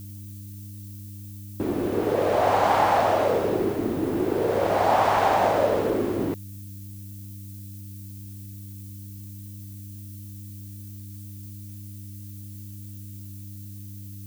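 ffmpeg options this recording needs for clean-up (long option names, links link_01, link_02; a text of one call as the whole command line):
ffmpeg -i in.wav -af "bandreject=frequency=100.1:width_type=h:width=4,bandreject=frequency=200.2:width_type=h:width=4,bandreject=frequency=300.3:width_type=h:width=4,afftdn=noise_reduction=30:noise_floor=-39" out.wav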